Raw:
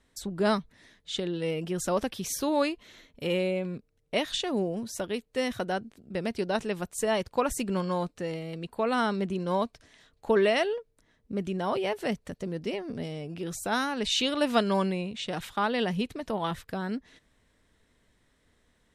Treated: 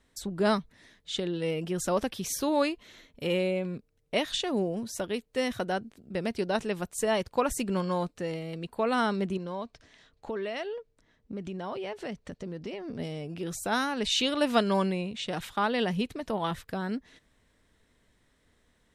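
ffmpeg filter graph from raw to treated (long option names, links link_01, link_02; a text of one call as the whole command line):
ffmpeg -i in.wav -filter_complex "[0:a]asettb=1/sr,asplit=3[link_01][link_02][link_03];[link_01]atrim=end=9.374[link_04];[link_02]atrim=start=9.37:end=12.99,asetpts=PTS-STARTPTS,afade=type=in:duration=0.004:curve=qsin,afade=type=out:start_time=3.616:duration=0.004:curve=qsin,lowpass=6800,acompressor=threshold=-34dB:ratio=3:attack=3.2:release=140:knee=1:detection=peak[link_05];[link_03]atrim=start=12.986[link_06];[link_04][link_05]acrossfade=duration=0.004:curve1=hsin:curve2=qsin[link_07];[link_07][link_06]acrossfade=duration=0.004:curve1=qsin:curve2=hsin" out.wav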